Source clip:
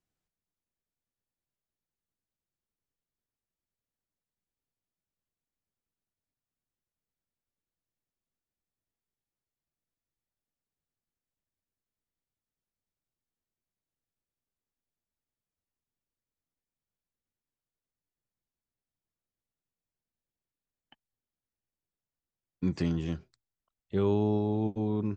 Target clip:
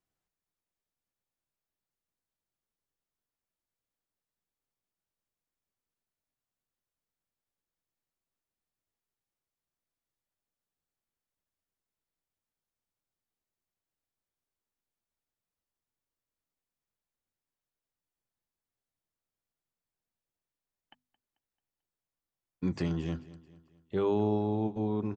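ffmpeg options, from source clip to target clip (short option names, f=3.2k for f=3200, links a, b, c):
-filter_complex "[0:a]equalizer=f=900:t=o:w=2.1:g=4,bandreject=f=50:t=h:w=6,bandreject=f=100:t=h:w=6,bandreject=f=150:t=h:w=6,bandreject=f=200:t=h:w=6,bandreject=f=250:t=h:w=6,asplit=2[a][b];[b]aecho=0:1:220|440|660|880:0.106|0.0487|0.0224|0.0103[c];[a][c]amix=inputs=2:normalize=0,volume=-2dB"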